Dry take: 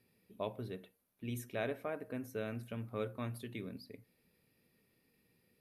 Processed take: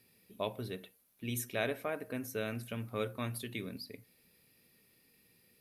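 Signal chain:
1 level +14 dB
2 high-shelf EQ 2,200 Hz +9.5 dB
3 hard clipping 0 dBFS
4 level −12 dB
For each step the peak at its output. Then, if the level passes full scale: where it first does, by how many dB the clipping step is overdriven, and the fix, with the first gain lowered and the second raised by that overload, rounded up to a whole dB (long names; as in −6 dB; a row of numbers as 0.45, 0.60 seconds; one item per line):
−8.5, −5.5, −5.5, −17.5 dBFS
no step passes full scale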